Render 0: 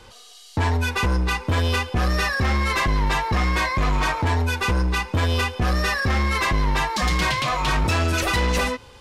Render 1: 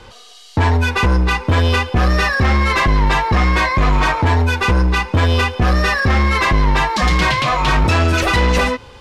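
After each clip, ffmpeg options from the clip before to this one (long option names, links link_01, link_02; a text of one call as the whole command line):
ffmpeg -i in.wav -af "highshelf=frequency=7100:gain=-11.5,volume=7dB" out.wav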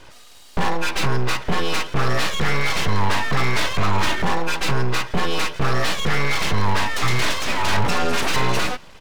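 ffmpeg -i in.wav -af "aecho=1:1:3.2:0.58,aeval=exprs='abs(val(0))':channel_layout=same,volume=-4dB" out.wav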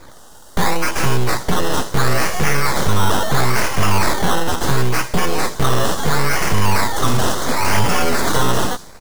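ffmpeg -i in.wav -filter_complex "[0:a]acrossover=split=5100[link_01][link_02];[link_01]acrusher=samples=15:mix=1:aa=0.000001:lfo=1:lforange=9:lforate=0.73[link_03];[link_02]aecho=1:1:76|152|228|304|380|456:0.531|0.25|0.117|0.0551|0.0259|0.0122[link_04];[link_03][link_04]amix=inputs=2:normalize=0,volume=4dB" out.wav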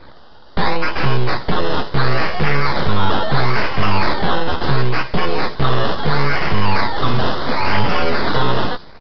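ffmpeg -i in.wav -filter_complex "[0:a]asplit=2[link_01][link_02];[link_02]adelay=14,volume=-11.5dB[link_03];[link_01][link_03]amix=inputs=2:normalize=0,aresample=11025,aresample=44100" out.wav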